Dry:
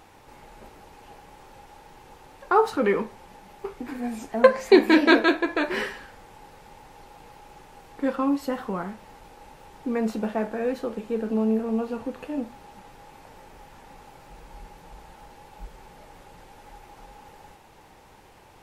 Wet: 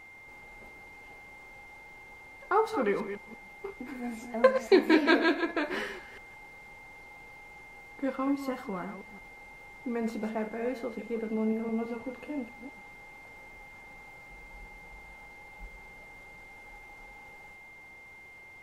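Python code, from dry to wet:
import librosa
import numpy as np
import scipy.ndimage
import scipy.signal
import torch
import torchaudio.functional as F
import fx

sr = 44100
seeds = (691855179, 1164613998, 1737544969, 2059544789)

y = fx.reverse_delay(x, sr, ms=167, wet_db=-10)
y = y + 10.0 ** (-42.0 / 20.0) * np.sin(2.0 * np.pi * 2100.0 * np.arange(len(y)) / sr)
y = F.gain(torch.from_numpy(y), -6.5).numpy()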